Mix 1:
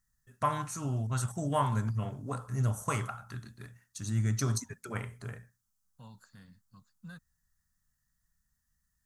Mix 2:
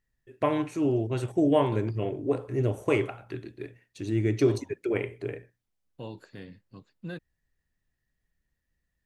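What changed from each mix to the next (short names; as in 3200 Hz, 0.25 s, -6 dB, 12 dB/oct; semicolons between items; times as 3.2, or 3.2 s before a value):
second voice +8.0 dB; master: remove EQ curve 230 Hz 0 dB, 330 Hz -22 dB, 1300 Hz +7 dB, 2400 Hz -11 dB, 6400 Hz +11 dB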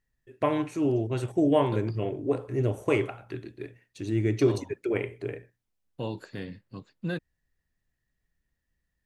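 second voice +6.5 dB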